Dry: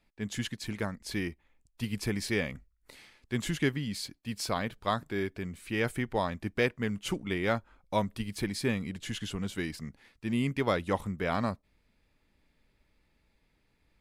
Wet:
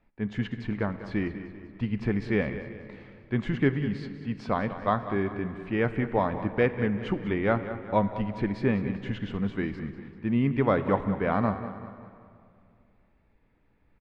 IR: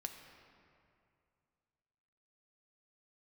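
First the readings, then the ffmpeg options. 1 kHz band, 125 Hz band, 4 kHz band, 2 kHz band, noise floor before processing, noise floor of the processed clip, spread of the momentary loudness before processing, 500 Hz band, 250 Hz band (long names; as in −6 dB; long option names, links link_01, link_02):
+5.0 dB, +5.5 dB, −8.0 dB, +1.0 dB, −73 dBFS, −65 dBFS, 8 LU, +5.0 dB, +5.5 dB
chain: -filter_complex "[0:a]lowpass=1700,aecho=1:1:195|390|585|780|975:0.224|0.103|0.0474|0.0218|0.01,asplit=2[link_01][link_02];[1:a]atrim=start_sample=2205,lowpass=7800[link_03];[link_02][link_03]afir=irnorm=-1:irlink=0,volume=1dB[link_04];[link_01][link_04]amix=inputs=2:normalize=0"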